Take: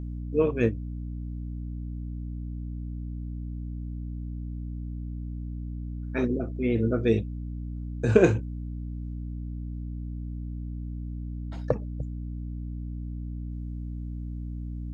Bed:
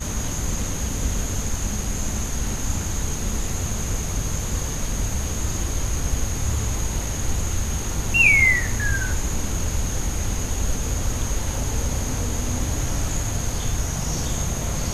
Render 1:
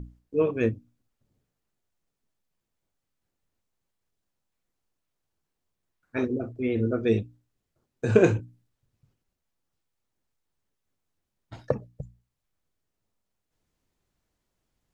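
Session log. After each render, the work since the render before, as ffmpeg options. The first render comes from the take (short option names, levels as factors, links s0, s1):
-af "bandreject=f=60:t=h:w=6,bandreject=f=120:t=h:w=6,bandreject=f=180:t=h:w=6,bandreject=f=240:t=h:w=6,bandreject=f=300:t=h:w=6"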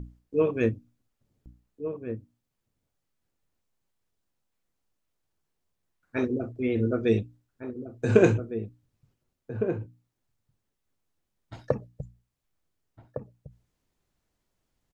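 -filter_complex "[0:a]asplit=2[s0][s1];[s1]adelay=1458,volume=0.355,highshelf=f=4000:g=-32.8[s2];[s0][s2]amix=inputs=2:normalize=0"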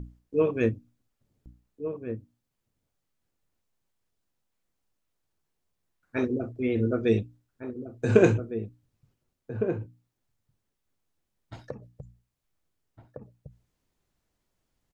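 -filter_complex "[0:a]asplit=3[s0][s1][s2];[s0]afade=t=out:st=11.68:d=0.02[s3];[s1]acompressor=threshold=0.00891:ratio=2:attack=3.2:release=140:knee=1:detection=peak,afade=t=in:st=11.68:d=0.02,afade=t=out:st=13.21:d=0.02[s4];[s2]afade=t=in:st=13.21:d=0.02[s5];[s3][s4][s5]amix=inputs=3:normalize=0"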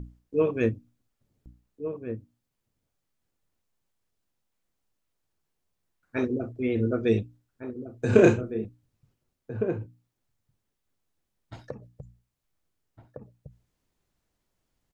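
-filter_complex "[0:a]asettb=1/sr,asplit=3[s0][s1][s2];[s0]atrim=end=8.104[s3];[s1]atrim=start=8.1:end=8.65,asetpts=PTS-STARTPTS,afade=t=in:d=0.004:c=qsin,afade=t=out:st=0.546:d=0.004:c=qsin,asplit=2[s4][s5];[s5]adelay=32,volume=0.708[s6];[s4][s6]amix=inputs=2:normalize=0,atrim=end_sample=24255[s7];[s2]atrim=start=8.646[s8];[s3][s7]acrossfade=d=0.004:c1=hsin:c2=qsin[s9];[s9][s8]acrossfade=d=0.004:c1=qsin:c2=hsin"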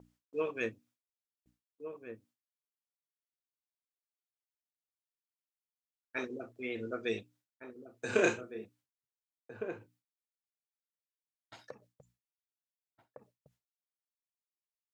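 -af "agate=range=0.0224:threshold=0.00398:ratio=3:detection=peak,highpass=f=1500:p=1"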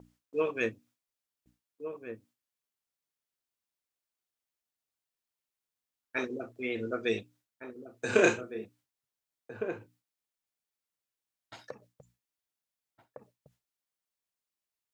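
-af "volume=1.68"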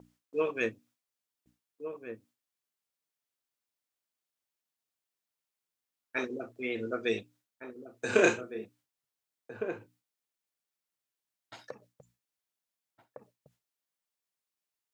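-af "lowshelf=f=75:g=-8.5"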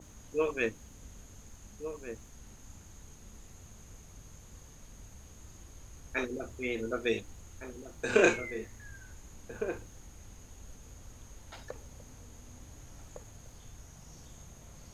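-filter_complex "[1:a]volume=0.0473[s0];[0:a][s0]amix=inputs=2:normalize=0"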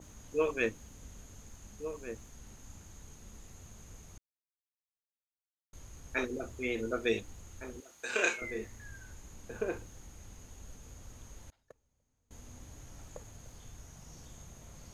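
-filter_complex "[0:a]asettb=1/sr,asplit=3[s0][s1][s2];[s0]atrim=end=7.804[s3];[s1]atrim=start=7.8:end=8.42,asetpts=PTS-STARTPTS,afade=t=in:d=0.004:c=qsin,afade=t=out:st=0.616:d=0.004:c=qsin,highpass=f=1500:p=1[s4];[s2]atrim=start=8.416[s5];[s3][s4]acrossfade=d=0.004:c1=hsin:c2=qsin[s6];[s6][s5]acrossfade=d=0.004:c1=qsin:c2=hsin,asettb=1/sr,asplit=3[s7][s8][s9];[s7]atrim=end=11.504[s10];[s8]atrim=start=11.5:end=12.31,asetpts=PTS-STARTPTS,afade=t=in:d=0.004:c=qsin,afade=t=out:st=0.806:d=0.004:c=qsin,agate=range=0.0398:threshold=0.0126:ratio=16:release=100:detection=peak[s11];[s9]atrim=start=12.306[s12];[s10][s11]acrossfade=d=0.004:c1=hsin:c2=qsin[s13];[s13][s12]acrossfade=d=0.004:c1=qsin:c2=hsin,asplit=3[s14][s15][s16];[s14]atrim=end=4.18,asetpts=PTS-STARTPTS,afade=t=out:st=4.176:d=0.004:c=hsin[s17];[s15]atrim=start=4.18:end=5.73,asetpts=PTS-STARTPTS,volume=0[s18];[s16]atrim=start=5.73,asetpts=PTS-STARTPTS,afade=t=in:d=0.004:c=hsin[s19];[s17][s18][s19]concat=n=3:v=0:a=1"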